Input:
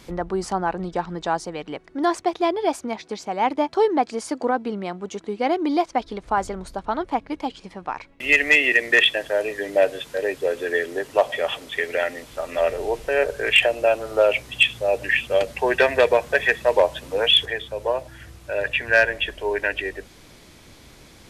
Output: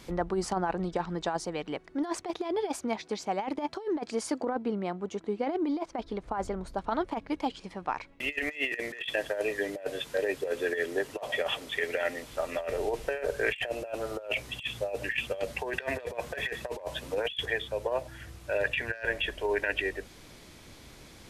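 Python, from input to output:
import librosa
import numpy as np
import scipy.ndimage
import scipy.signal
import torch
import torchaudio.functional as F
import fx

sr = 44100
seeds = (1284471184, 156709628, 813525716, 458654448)

y = fx.high_shelf(x, sr, hz=2200.0, db=-7.5, at=(4.4, 6.77))
y = fx.over_compress(y, sr, threshold_db=-23.0, ratio=-0.5)
y = y * librosa.db_to_amplitude(-6.5)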